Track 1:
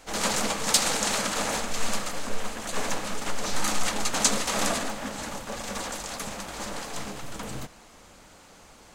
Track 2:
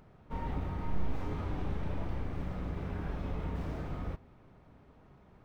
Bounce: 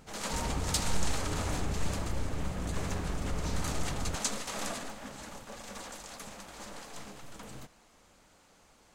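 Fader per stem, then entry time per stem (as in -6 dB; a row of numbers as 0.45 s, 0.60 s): -10.5 dB, +1.5 dB; 0.00 s, 0.00 s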